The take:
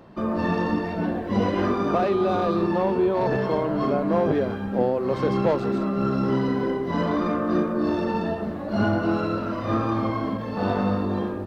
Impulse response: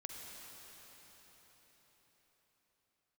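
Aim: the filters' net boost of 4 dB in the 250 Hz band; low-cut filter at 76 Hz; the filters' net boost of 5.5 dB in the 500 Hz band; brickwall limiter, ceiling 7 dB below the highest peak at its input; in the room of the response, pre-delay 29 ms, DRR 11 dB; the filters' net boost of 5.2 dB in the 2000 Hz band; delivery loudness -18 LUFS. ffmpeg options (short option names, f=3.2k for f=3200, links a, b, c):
-filter_complex "[0:a]highpass=76,equalizer=f=250:t=o:g=3.5,equalizer=f=500:t=o:g=5.5,equalizer=f=2k:t=o:g=6.5,alimiter=limit=-12dB:level=0:latency=1,asplit=2[a][b];[1:a]atrim=start_sample=2205,adelay=29[c];[b][c]afir=irnorm=-1:irlink=0,volume=-9dB[d];[a][d]amix=inputs=2:normalize=0,volume=3dB"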